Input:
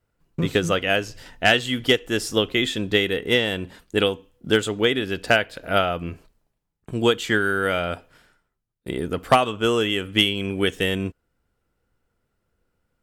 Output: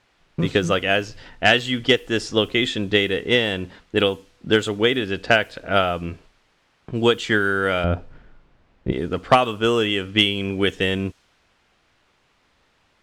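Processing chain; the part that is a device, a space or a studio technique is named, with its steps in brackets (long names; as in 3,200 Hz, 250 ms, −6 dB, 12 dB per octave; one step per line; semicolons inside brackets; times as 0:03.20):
low-pass filter 6,800 Hz 12 dB per octave
cassette deck with a dynamic noise filter (white noise bed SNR 33 dB; low-pass that shuts in the quiet parts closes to 2,800 Hz, open at −16.5 dBFS)
0:07.84–0:08.92: spectral tilt −3.5 dB per octave
level +1.5 dB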